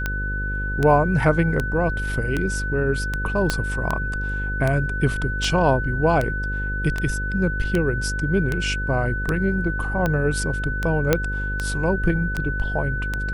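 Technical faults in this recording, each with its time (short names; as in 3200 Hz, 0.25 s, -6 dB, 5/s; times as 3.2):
buzz 50 Hz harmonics 11 -27 dBFS
tick 78 rpm -10 dBFS
tone 1500 Hz -27 dBFS
3.5 pop -6 dBFS
11.13 pop -3 dBFS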